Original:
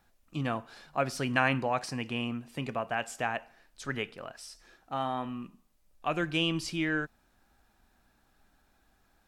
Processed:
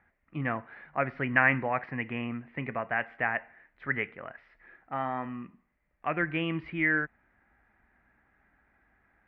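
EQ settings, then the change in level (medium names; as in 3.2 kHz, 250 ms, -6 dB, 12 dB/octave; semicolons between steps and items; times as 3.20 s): high-pass 41 Hz; resonant low-pass 2 kHz, resonance Q 6.4; distance through air 450 m; 0.0 dB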